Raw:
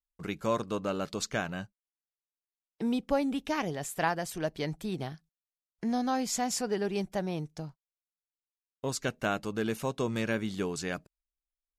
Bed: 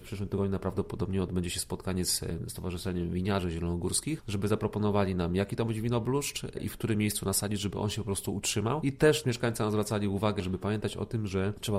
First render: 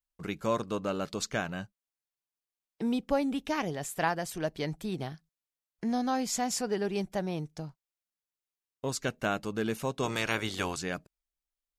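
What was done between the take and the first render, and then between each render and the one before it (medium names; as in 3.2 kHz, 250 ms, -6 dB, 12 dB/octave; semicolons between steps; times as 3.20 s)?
10.02–10.76 s: spectral peaks clipped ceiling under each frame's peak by 18 dB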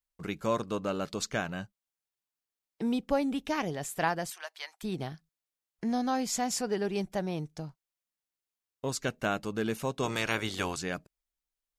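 4.30–4.83 s: high-pass 900 Hz 24 dB/octave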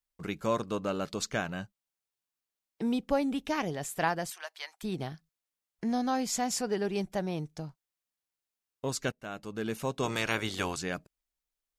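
9.12–9.89 s: fade in, from -19.5 dB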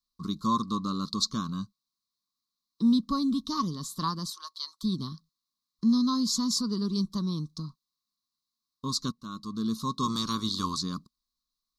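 FFT filter 120 Hz 0 dB, 230 Hz +9 dB, 760 Hz -27 dB, 1.1 kHz +13 dB, 1.6 kHz -19 dB, 2.6 kHz -24 dB, 4 kHz +14 dB, 7.8 kHz -2 dB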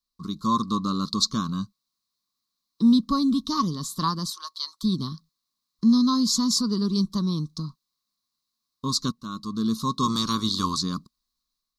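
level rider gain up to 5 dB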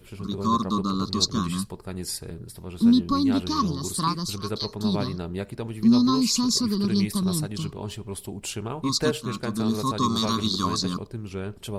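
add bed -2.5 dB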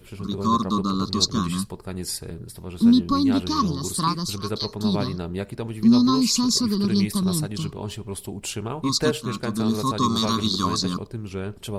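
trim +2 dB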